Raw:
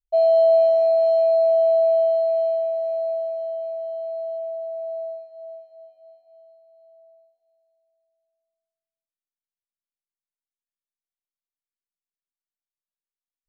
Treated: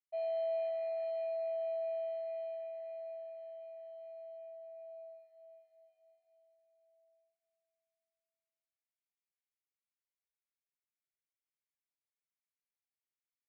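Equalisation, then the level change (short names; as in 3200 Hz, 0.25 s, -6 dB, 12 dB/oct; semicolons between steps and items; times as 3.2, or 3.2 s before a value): band-pass 2200 Hz, Q 4.5; air absorption 250 m; +4.0 dB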